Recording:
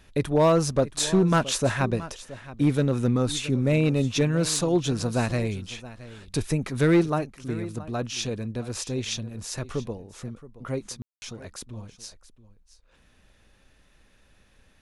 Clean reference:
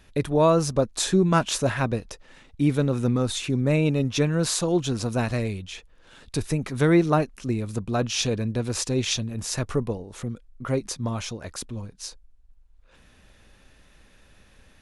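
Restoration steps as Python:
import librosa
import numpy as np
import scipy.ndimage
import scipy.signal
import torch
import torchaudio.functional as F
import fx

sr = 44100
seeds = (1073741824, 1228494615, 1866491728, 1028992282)

y = fx.fix_declip(x, sr, threshold_db=-13.5)
y = fx.fix_ambience(y, sr, seeds[0], print_start_s=12.77, print_end_s=13.27, start_s=11.02, end_s=11.22)
y = fx.fix_echo_inverse(y, sr, delay_ms=673, level_db=-17.0)
y = fx.gain(y, sr, db=fx.steps((0.0, 0.0), (7.05, 5.0)))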